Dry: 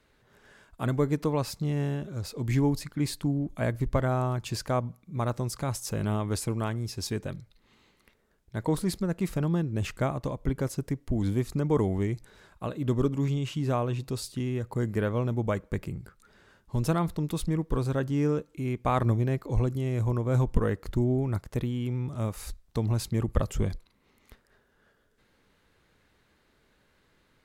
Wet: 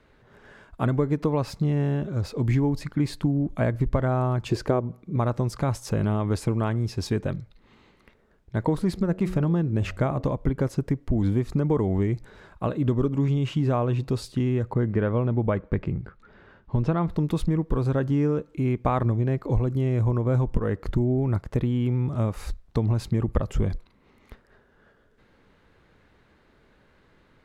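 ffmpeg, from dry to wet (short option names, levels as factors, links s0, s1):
-filter_complex "[0:a]asettb=1/sr,asplit=3[s0][s1][s2];[s0]atrim=end=4.494[s3];[s1]atrim=start=4.49:end=5.16,asetpts=PTS-STARTPTS,afade=t=in:d=0.004:c=qsin,afade=t=out:st=0.666:d=0.004:c=qsin,equalizer=f=380:w=1.8:g=11.5[s4];[s2]atrim=start=5.156[s5];[s3][s4]acrossfade=d=0.004:c1=hsin:c2=qsin[s6];[s6][s5]acrossfade=d=0.004:c1=qsin:c2=hsin,asplit=3[s7][s8][s9];[s7]afade=t=out:st=8.96:d=0.02[s10];[s8]bandreject=f=92.09:t=h:w=4,bandreject=f=184.18:t=h:w=4,bandreject=f=276.27:t=h:w=4,bandreject=f=368.36:t=h:w=4,bandreject=f=460.45:t=h:w=4,bandreject=f=552.54:t=h:w=4,bandreject=f=644.63:t=h:w=4,bandreject=f=736.72:t=h:w=4,afade=t=in:st=8.96:d=0.02,afade=t=out:st=10.22:d=0.02[s11];[s9]afade=t=in:st=10.22:d=0.02[s12];[s10][s11][s12]amix=inputs=3:normalize=0,asplit=3[s13][s14][s15];[s13]afade=t=out:st=14.72:d=0.02[s16];[s14]lowpass=3700,afade=t=in:st=14.72:d=0.02,afade=t=out:st=17.09:d=0.02[s17];[s15]afade=t=in:st=17.09:d=0.02[s18];[s16][s17][s18]amix=inputs=3:normalize=0,lowpass=f=1900:p=1,acompressor=threshold=0.0447:ratio=6,volume=2.51"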